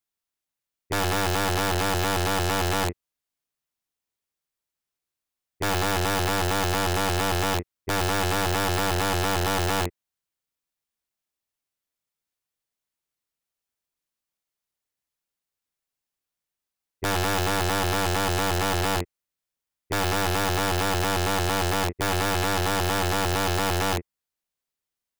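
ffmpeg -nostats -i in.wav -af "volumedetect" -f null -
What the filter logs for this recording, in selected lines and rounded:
mean_volume: -27.5 dB
max_volume: -19.2 dB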